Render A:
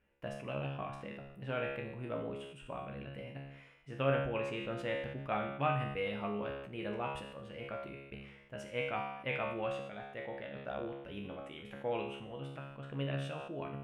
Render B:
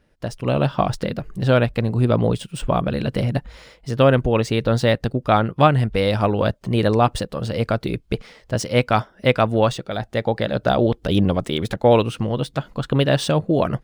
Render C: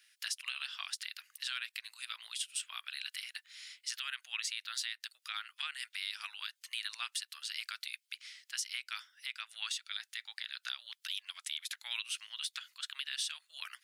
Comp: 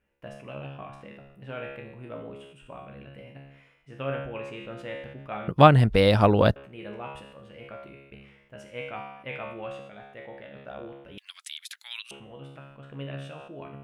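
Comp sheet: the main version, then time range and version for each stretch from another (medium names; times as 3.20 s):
A
5.48–6.56 s: from B
11.18–12.11 s: from C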